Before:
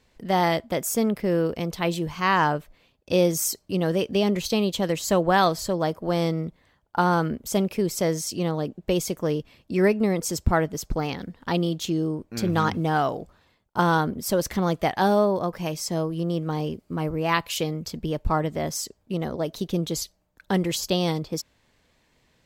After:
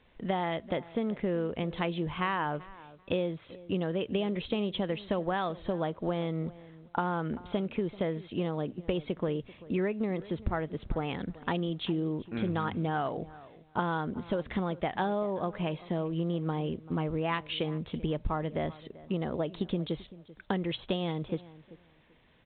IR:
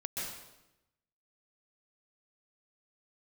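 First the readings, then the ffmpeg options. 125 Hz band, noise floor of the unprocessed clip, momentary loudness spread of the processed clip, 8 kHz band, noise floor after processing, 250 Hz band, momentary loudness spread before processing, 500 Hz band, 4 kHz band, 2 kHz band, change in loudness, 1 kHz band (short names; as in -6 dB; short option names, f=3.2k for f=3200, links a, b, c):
-7.0 dB, -66 dBFS, 5 LU, under -40 dB, -61 dBFS, -7.0 dB, 9 LU, -8.0 dB, -9.0 dB, -9.0 dB, -8.0 dB, -9.5 dB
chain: -filter_complex "[0:a]bandreject=f=60:t=h:w=6,bandreject=f=120:t=h:w=6,acompressor=threshold=-27dB:ratio=8,asplit=2[a][b];[b]adelay=388,lowpass=f=2.3k:p=1,volume=-18.5dB,asplit=2[c][d];[d]adelay=388,lowpass=f=2.3k:p=1,volume=0.2[e];[a][c][e]amix=inputs=3:normalize=0" -ar 8000 -c:a pcm_alaw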